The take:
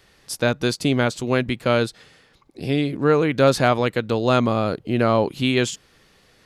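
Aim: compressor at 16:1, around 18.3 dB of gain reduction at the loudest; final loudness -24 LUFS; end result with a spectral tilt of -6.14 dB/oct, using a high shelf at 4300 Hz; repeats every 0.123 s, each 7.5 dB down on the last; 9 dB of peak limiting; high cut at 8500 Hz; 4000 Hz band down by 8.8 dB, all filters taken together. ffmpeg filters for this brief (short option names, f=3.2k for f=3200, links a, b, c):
-af "lowpass=8.5k,equalizer=f=4k:t=o:g=-8.5,highshelf=f=4.3k:g=-5.5,acompressor=threshold=-30dB:ratio=16,alimiter=level_in=3.5dB:limit=-24dB:level=0:latency=1,volume=-3.5dB,aecho=1:1:123|246|369|492|615:0.422|0.177|0.0744|0.0312|0.0131,volume=13.5dB"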